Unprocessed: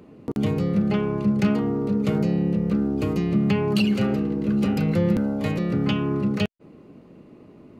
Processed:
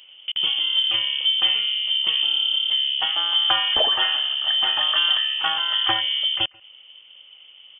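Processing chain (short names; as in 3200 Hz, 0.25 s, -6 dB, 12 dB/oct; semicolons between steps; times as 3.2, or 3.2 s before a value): speakerphone echo 0.14 s, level -23 dB; inverted band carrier 3300 Hz; spectral gain 3.01–6.01, 620–1900 Hz +12 dB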